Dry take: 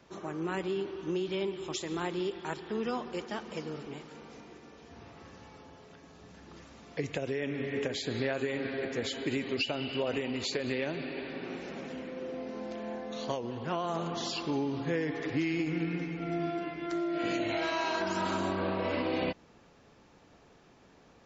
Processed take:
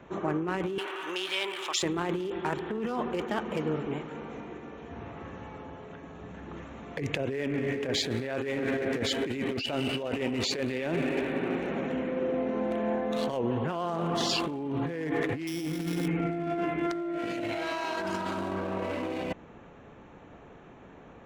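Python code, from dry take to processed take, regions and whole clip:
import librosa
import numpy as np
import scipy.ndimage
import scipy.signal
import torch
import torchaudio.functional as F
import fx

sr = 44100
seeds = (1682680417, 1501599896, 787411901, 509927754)

y = fx.chain(x, sr, fx.highpass(hz=1200.0, slope=12),
    fx.env_flatten(amount_pct=50), at=(0.78, 1.83))
y = fx.chain(y, sr, fx.sample_sort(block=8),
    fx.hum_notches(base_hz=60, count=9), at=(15.47, 16.08))
y = fx.wiener(y, sr, points=9)
y = fx.over_compress(y, sr, threshold_db=-37.0, ratio=-1.0)
y = y * 10.0 ** (6.5 / 20.0)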